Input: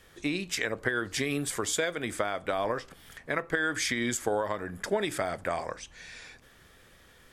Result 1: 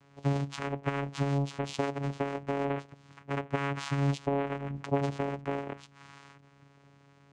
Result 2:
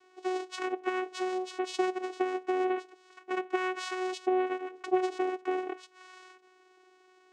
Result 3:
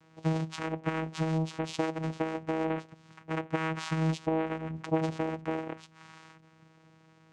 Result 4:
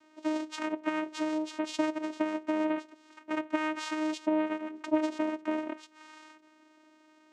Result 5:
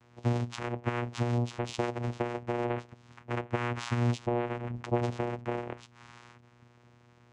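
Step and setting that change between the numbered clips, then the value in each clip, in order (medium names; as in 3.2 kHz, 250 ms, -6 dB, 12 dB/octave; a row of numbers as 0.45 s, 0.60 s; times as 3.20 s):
vocoder, frequency: 140 Hz, 370 Hz, 160 Hz, 310 Hz, 120 Hz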